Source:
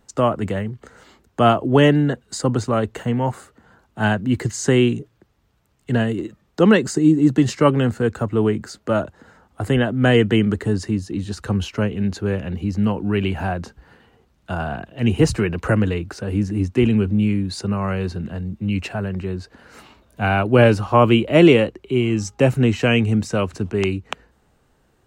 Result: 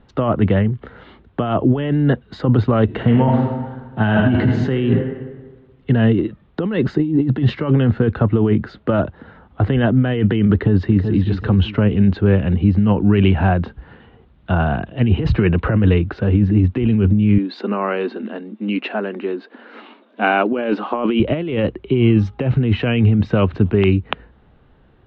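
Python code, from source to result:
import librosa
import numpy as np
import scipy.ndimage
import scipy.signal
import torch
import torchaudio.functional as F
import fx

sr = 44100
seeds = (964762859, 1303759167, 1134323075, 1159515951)

y = fx.reverb_throw(x, sr, start_s=2.84, length_s=1.9, rt60_s=1.4, drr_db=3.0)
y = fx.echo_throw(y, sr, start_s=10.53, length_s=0.68, ms=380, feedback_pct=30, wet_db=-10.0)
y = fx.brickwall_highpass(y, sr, low_hz=210.0, at=(17.38, 21.2))
y = fx.over_compress(y, sr, threshold_db=-20.0, ratio=-1.0)
y = scipy.signal.sosfilt(scipy.signal.cheby1(4, 1.0, 3600.0, 'lowpass', fs=sr, output='sos'), y)
y = fx.low_shelf(y, sr, hz=330.0, db=7.0)
y = y * 10.0 ** (2.0 / 20.0)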